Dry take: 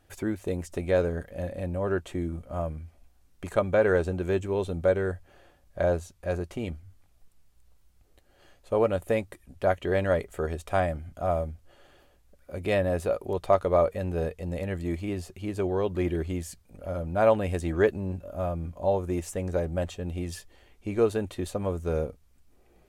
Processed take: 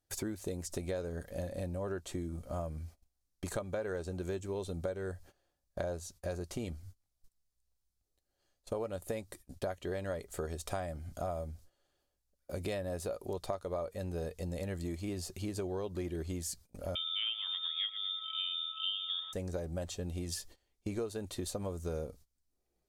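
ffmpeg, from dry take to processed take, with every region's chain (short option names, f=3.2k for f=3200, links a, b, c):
-filter_complex "[0:a]asettb=1/sr,asplit=3[a][b][c];[a]atrim=end=16.954[d];[b]atrim=start=16.95:end=19.33,asetpts=PTS-STARTPTS,afade=t=in:d=0.004:c=qsin,afade=t=out:st=2.376:d=0.004:c=qsin,aecho=1:1:115|230|345|460:0.2|0.0778|0.0303|0.0118,atrim=end_sample=104958,aeval=exprs='val(0)+0.00794*sin(2*PI*2400*n/s)':c=same,lowpass=f=3.1k:t=q:w=0.5098,lowpass=f=3.1k:t=q:w=0.6013,lowpass=f=3.1k:t=q:w=0.9,lowpass=f=3.1k:t=q:w=2.563,afreqshift=-3700[e];[c]atrim=start=19.326[f];[d][e]acrossfade=d=0.004:c1=hsin:c2=qsin[g];[g][f]acrossfade=d=0.004:c1=qsin:c2=hsin,highshelf=f=3.5k:t=q:w=1.5:g=7.5,agate=range=-22dB:threshold=-48dB:ratio=16:detection=peak,acompressor=threshold=-35dB:ratio=6"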